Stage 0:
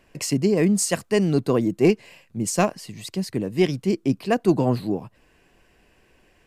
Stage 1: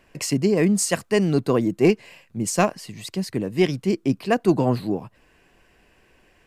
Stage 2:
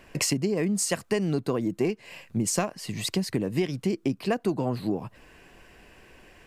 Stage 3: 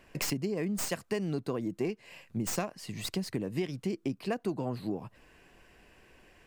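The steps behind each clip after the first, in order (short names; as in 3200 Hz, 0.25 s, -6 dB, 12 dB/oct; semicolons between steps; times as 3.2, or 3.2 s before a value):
bell 1500 Hz +2.5 dB 2 oct
compressor 12:1, threshold -28 dBFS, peak gain reduction 17 dB; gain +5.5 dB
tracing distortion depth 0.064 ms; gain -6.5 dB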